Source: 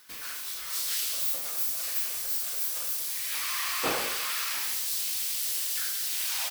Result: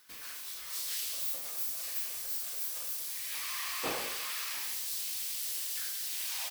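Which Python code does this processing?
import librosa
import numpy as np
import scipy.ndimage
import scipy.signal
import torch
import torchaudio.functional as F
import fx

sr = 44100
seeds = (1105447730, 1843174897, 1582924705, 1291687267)

y = fx.dynamic_eq(x, sr, hz=1400.0, q=6.0, threshold_db=-56.0, ratio=4.0, max_db=-5)
y = y * 10.0 ** (-6.0 / 20.0)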